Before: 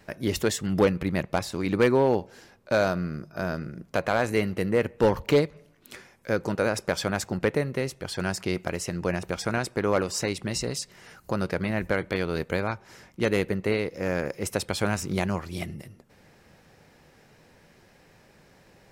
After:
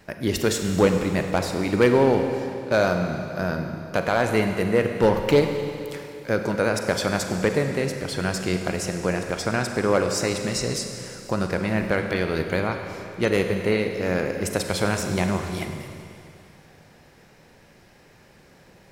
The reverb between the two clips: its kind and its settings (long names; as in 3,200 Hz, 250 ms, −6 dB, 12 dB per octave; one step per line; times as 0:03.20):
four-comb reverb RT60 2.7 s, combs from 33 ms, DRR 5 dB
level +2.5 dB